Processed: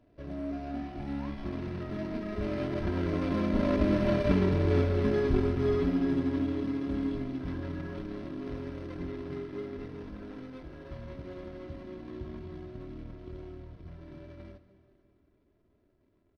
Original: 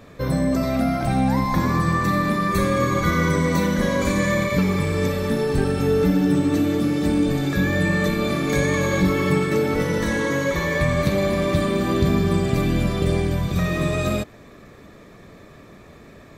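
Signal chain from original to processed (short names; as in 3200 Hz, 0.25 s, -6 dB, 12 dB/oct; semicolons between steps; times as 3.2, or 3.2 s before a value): median filter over 41 samples; Doppler pass-by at 4.39, 24 m/s, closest 20 m; polynomial smoothing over 15 samples; comb 3 ms, depth 57%; plate-style reverb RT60 2.6 s, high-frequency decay 0.9×, pre-delay 0 ms, DRR 11.5 dB; gain -2.5 dB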